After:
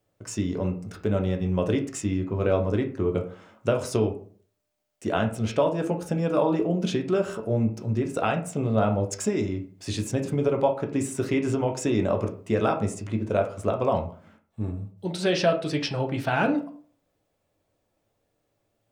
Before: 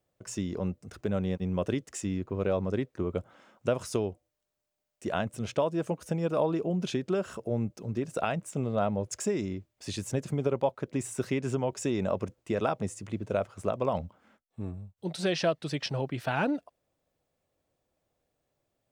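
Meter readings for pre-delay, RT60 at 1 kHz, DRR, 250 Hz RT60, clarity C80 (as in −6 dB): 7 ms, 0.45 s, 3.5 dB, 0.55 s, 16.5 dB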